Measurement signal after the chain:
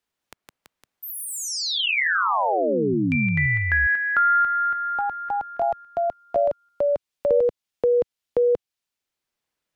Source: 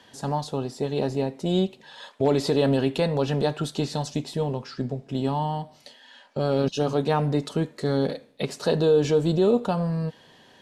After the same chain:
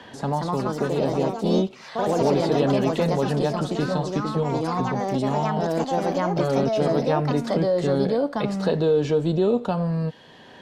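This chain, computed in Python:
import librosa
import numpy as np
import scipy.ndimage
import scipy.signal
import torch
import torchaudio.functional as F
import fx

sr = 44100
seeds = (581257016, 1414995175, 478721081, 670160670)

y = fx.high_shelf(x, sr, hz=5600.0, db=-11.5)
y = fx.echo_pitch(y, sr, ms=214, semitones=3, count=3, db_per_echo=-3.0)
y = fx.band_squash(y, sr, depth_pct=40)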